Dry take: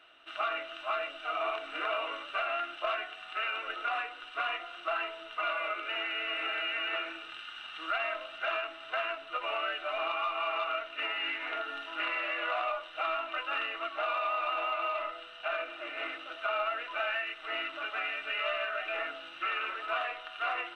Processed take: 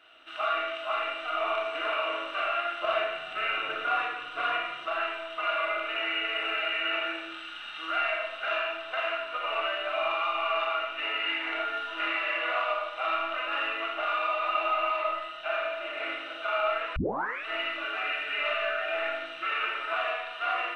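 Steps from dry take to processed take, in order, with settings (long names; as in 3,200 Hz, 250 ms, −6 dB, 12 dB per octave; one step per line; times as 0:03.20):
0:02.81–0:04.83: parametric band 130 Hz +14 dB 2.4 octaves
four-comb reverb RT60 0.89 s, combs from 27 ms, DRR −1.5 dB
0:16.96: tape start 0.49 s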